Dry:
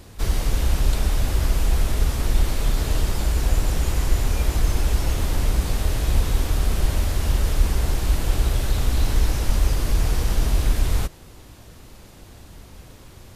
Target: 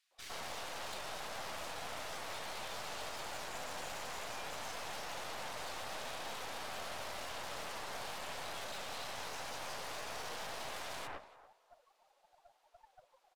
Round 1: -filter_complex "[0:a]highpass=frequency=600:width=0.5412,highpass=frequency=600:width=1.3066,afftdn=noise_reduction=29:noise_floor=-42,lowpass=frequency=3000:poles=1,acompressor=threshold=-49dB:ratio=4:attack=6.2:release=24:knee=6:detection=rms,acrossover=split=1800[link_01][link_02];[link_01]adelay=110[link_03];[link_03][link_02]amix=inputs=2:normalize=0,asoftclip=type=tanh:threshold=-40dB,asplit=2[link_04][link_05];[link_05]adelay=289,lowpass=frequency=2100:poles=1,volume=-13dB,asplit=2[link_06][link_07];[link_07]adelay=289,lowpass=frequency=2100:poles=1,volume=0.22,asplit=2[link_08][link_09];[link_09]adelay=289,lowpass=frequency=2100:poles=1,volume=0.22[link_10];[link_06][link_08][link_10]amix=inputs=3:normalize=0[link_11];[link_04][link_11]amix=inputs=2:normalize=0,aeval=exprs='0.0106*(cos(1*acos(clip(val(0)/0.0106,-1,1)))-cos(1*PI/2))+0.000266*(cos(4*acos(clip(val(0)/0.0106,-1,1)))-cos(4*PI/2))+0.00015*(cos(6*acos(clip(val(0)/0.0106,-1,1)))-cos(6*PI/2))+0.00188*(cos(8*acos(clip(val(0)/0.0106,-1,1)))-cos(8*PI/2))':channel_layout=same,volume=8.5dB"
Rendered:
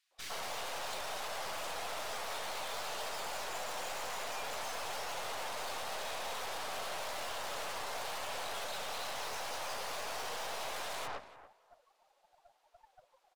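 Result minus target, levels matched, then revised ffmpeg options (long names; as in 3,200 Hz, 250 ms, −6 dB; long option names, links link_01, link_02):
downward compressor: peak gain reduction −5 dB
-filter_complex "[0:a]highpass=frequency=600:width=0.5412,highpass=frequency=600:width=1.3066,afftdn=noise_reduction=29:noise_floor=-42,lowpass=frequency=3000:poles=1,acompressor=threshold=-55.5dB:ratio=4:attack=6.2:release=24:knee=6:detection=rms,acrossover=split=1800[link_01][link_02];[link_01]adelay=110[link_03];[link_03][link_02]amix=inputs=2:normalize=0,asoftclip=type=tanh:threshold=-40dB,asplit=2[link_04][link_05];[link_05]adelay=289,lowpass=frequency=2100:poles=1,volume=-13dB,asplit=2[link_06][link_07];[link_07]adelay=289,lowpass=frequency=2100:poles=1,volume=0.22,asplit=2[link_08][link_09];[link_09]adelay=289,lowpass=frequency=2100:poles=1,volume=0.22[link_10];[link_06][link_08][link_10]amix=inputs=3:normalize=0[link_11];[link_04][link_11]amix=inputs=2:normalize=0,aeval=exprs='0.0106*(cos(1*acos(clip(val(0)/0.0106,-1,1)))-cos(1*PI/2))+0.000266*(cos(4*acos(clip(val(0)/0.0106,-1,1)))-cos(4*PI/2))+0.00015*(cos(6*acos(clip(val(0)/0.0106,-1,1)))-cos(6*PI/2))+0.00188*(cos(8*acos(clip(val(0)/0.0106,-1,1)))-cos(8*PI/2))':channel_layout=same,volume=8.5dB"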